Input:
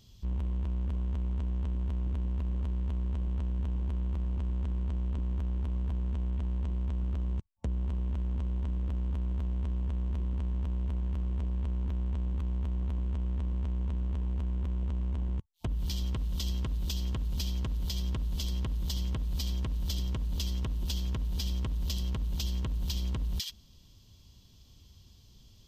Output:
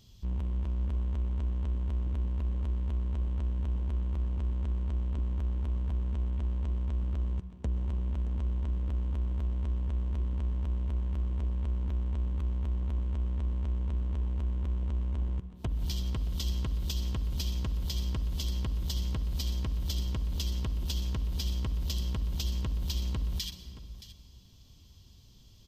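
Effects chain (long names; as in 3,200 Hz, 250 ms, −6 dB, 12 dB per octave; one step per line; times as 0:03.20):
single-tap delay 623 ms −14.5 dB
on a send at −14 dB: convolution reverb RT60 2.0 s, pre-delay 117 ms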